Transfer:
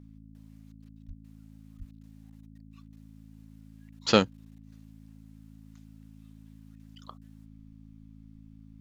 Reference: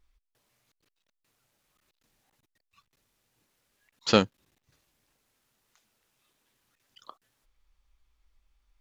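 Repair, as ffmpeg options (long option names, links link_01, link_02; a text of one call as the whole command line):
ffmpeg -i in.wav -filter_complex "[0:a]bandreject=frequency=54:width_type=h:width=4,bandreject=frequency=108:width_type=h:width=4,bandreject=frequency=162:width_type=h:width=4,bandreject=frequency=216:width_type=h:width=4,bandreject=frequency=270:width_type=h:width=4,asplit=3[link_01][link_02][link_03];[link_01]afade=type=out:start_time=1.07:duration=0.02[link_04];[link_02]highpass=frequency=140:width=0.5412,highpass=frequency=140:width=1.3066,afade=type=in:start_time=1.07:duration=0.02,afade=type=out:start_time=1.19:duration=0.02[link_05];[link_03]afade=type=in:start_time=1.19:duration=0.02[link_06];[link_04][link_05][link_06]amix=inputs=3:normalize=0,asplit=3[link_07][link_08][link_09];[link_07]afade=type=out:start_time=1.78:duration=0.02[link_10];[link_08]highpass=frequency=140:width=0.5412,highpass=frequency=140:width=1.3066,afade=type=in:start_time=1.78:duration=0.02,afade=type=out:start_time=1.9:duration=0.02[link_11];[link_09]afade=type=in:start_time=1.9:duration=0.02[link_12];[link_10][link_11][link_12]amix=inputs=3:normalize=0" out.wav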